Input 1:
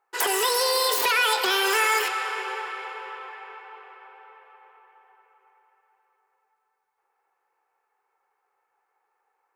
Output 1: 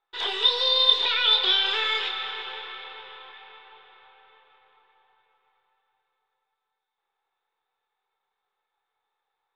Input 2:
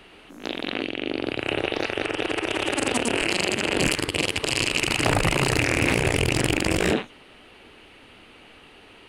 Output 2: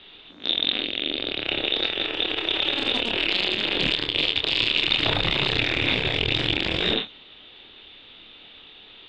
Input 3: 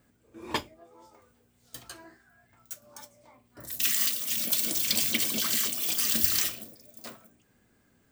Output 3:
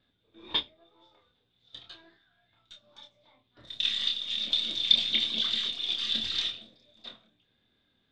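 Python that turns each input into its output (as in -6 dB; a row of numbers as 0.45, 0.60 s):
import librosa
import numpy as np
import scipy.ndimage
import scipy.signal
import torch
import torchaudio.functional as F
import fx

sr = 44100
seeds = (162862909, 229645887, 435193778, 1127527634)

y = np.where(x < 0.0, 10.0 ** (-3.0 / 20.0) * x, x)
y = fx.ladder_lowpass(y, sr, hz=3700.0, resonance_pct=90)
y = fx.doubler(y, sr, ms=27.0, db=-5.5)
y = librosa.util.normalize(y) * 10.0 ** (-6 / 20.0)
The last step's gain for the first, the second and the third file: +5.0, +8.5, +5.0 dB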